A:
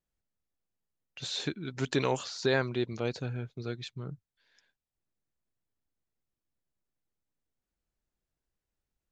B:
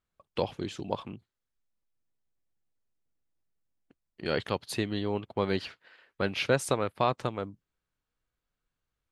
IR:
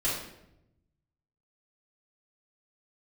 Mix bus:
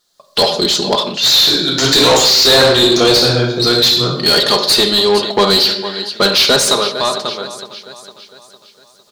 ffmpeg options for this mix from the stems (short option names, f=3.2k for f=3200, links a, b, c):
-filter_complex "[0:a]highpass=f=160:p=1,volume=0.5dB,asplit=2[a][b];[b]volume=-3.5dB[c];[1:a]aecho=1:1:4.9:0.64,volume=-2.5dB,afade=t=out:st=6.33:d=0.64:silence=0.223872,asplit=4[d][e][f][g];[e]volume=-15.5dB[h];[f]volume=-17dB[i];[g]apad=whole_len=402127[j];[a][j]sidechaincompress=threshold=-33dB:ratio=8:attack=16:release=1450[k];[2:a]atrim=start_sample=2205[l];[c][h]amix=inputs=2:normalize=0[m];[m][l]afir=irnorm=-1:irlink=0[n];[i]aecho=0:1:456|912|1368|1824|2280|2736|3192:1|0.47|0.221|0.104|0.0488|0.0229|0.0108[o];[k][d][n][o]amix=inputs=4:normalize=0,highshelf=f=3.2k:t=q:w=3:g=9,dynaudnorm=f=110:g=5:m=9.5dB,asplit=2[p][q];[q]highpass=f=720:p=1,volume=24dB,asoftclip=type=tanh:threshold=-0.5dB[r];[p][r]amix=inputs=2:normalize=0,lowpass=f=4k:p=1,volume=-6dB"